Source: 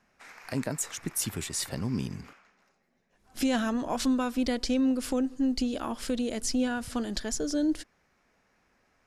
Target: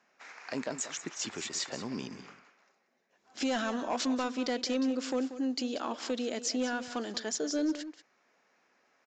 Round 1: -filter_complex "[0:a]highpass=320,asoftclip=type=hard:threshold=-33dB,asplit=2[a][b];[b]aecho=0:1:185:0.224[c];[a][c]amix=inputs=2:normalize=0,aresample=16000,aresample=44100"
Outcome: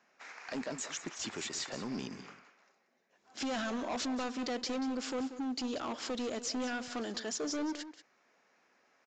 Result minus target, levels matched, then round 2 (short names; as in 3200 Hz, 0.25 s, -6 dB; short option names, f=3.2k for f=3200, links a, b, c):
hard clip: distortion +11 dB
-filter_complex "[0:a]highpass=320,asoftclip=type=hard:threshold=-25dB,asplit=2[a][b];[b]aecho=0:1:185:0.224[c];[a][c]amix=inputs=2:normalize=0,aresample=16000,aresample=44100"